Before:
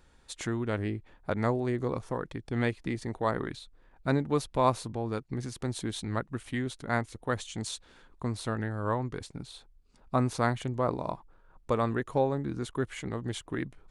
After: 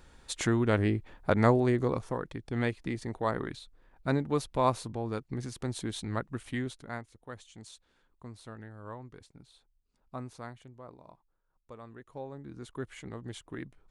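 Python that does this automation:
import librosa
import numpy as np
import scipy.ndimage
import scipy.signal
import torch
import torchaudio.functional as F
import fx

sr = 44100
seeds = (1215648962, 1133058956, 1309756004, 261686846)

y = fx.gain(x, sr, db=fx.line((1.58, 5.0), (2.25, -1.5), (6.63, -1.5), (7.07, -13.5), (10.18, -13.5), (10.83, -20.0), (11.85, -20.0), (12.8, -7.0)))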